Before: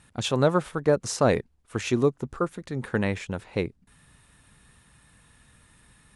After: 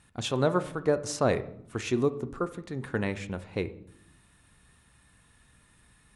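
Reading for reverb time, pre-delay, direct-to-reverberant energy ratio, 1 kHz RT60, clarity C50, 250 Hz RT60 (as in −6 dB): 0.70 s, 3 ms, 11.0 dB, 0.65 s, 16.0 dB, 1.2 s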